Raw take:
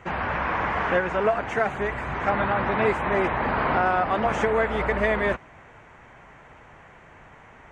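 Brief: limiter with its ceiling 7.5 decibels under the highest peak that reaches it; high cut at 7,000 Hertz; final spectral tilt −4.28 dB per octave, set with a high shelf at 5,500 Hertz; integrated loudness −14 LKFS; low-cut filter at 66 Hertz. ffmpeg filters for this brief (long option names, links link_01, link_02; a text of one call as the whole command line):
ffmpeg -i in.wav -af "highpass=66,lowpass=7000,highshelf=frequency=5500:gain=-5,volume=12.5dB,alimiter=limit=-4.5dB:level=0:latency=1" out.wav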